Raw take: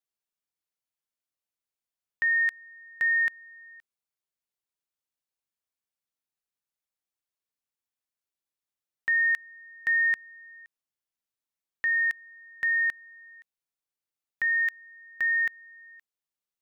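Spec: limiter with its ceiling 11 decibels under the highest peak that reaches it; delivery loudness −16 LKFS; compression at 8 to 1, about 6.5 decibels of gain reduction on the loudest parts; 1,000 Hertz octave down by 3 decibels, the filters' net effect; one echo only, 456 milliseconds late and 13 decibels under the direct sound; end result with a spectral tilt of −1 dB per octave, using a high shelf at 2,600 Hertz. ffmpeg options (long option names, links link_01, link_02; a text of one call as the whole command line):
ffmpeg -i in.wav -af "equalizer=frequency=1000:width_type=o:gain=-5.5,highshelf=frequency=2600:gain=5.5,acompressor=threshold=-29dB:ratio=8,alimiter=level_in=6.5dB:limit=-24dB:level=0:latency=1,volume=-6.5dB,aecho=1:1:456:0.224,volume=20dB" out.wav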